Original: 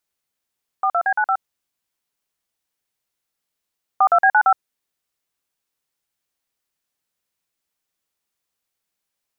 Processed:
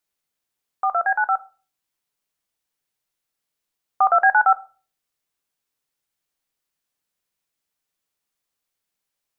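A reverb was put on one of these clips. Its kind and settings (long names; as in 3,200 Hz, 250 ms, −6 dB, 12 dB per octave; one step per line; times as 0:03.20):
rectangular room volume 250 cubic metres, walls furnished, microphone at 0.4 metres
level −1.5 dB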